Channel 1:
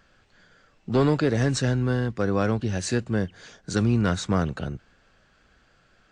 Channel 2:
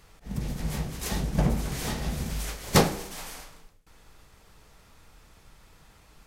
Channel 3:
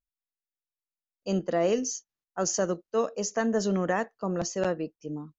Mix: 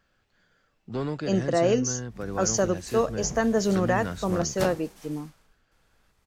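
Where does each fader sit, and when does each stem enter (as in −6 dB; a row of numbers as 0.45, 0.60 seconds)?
−9.5, −12.5, +3.0 decibels; 0.00, 1.85, 0.00 seconds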